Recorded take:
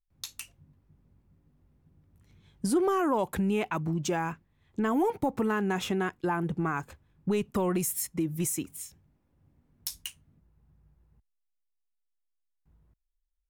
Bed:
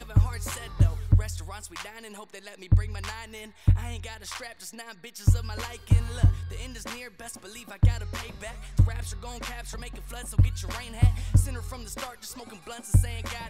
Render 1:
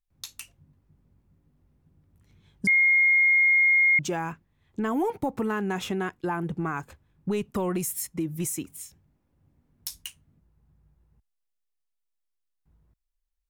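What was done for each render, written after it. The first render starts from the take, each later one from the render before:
0:02.67–0:03.99: beep over 2,140 Hz −16.5 dBFS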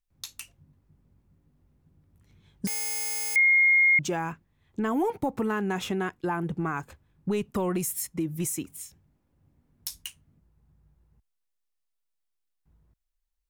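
0:02.67–0:03.36: wrap-around overflow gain 27 dB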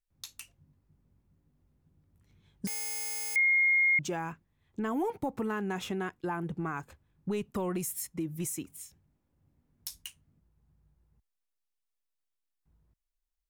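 level −5 dB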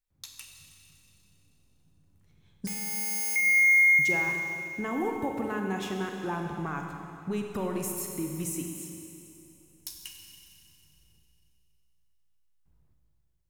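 four-comb reverb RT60 2.8 s, combs from 31 ms, DRR 2 dB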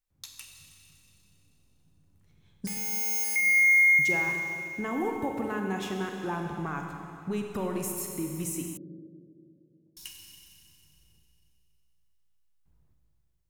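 0:02.72–0:03.24: double-tracking delay 48 ms −4 dB
0:08.77–0:09.97: Chebyshev band-pass filter 110–610 Hz, order 5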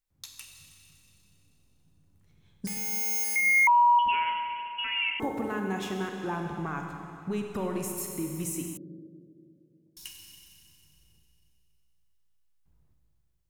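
0:03.67–0:05.20: voice inversion scrambler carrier 3,100 Hz
0:06.08–0:07.98: high-shelf EQ 11,000 Hz −5.5 dB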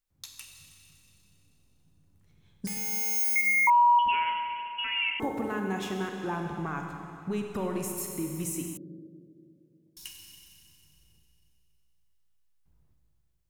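0:03.11–0:03.70: flutter between parallel walls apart 9.5 metres, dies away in 0.55 s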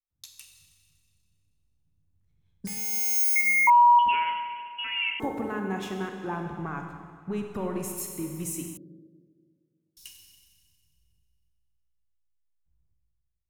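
multiband upward and downward expander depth 40%

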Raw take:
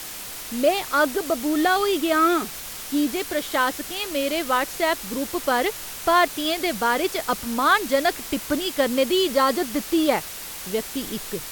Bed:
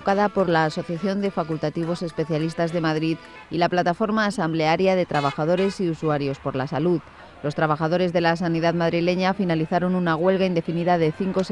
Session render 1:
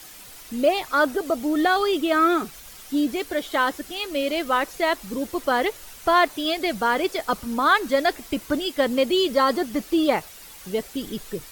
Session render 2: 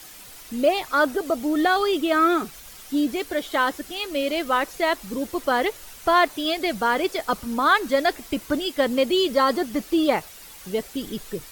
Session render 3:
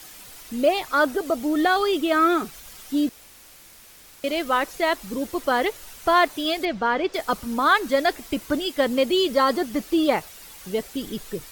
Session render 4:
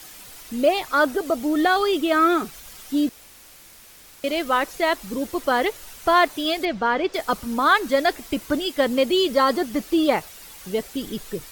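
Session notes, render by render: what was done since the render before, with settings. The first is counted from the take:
broadband denoise 10 dB, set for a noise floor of −35 dBFS
no processing that can be heard
0:03.09–0:04.24: fill with room tone; 0:06.65–0:07.14: high-frequency loss of the air 160 metres
level +1 dB

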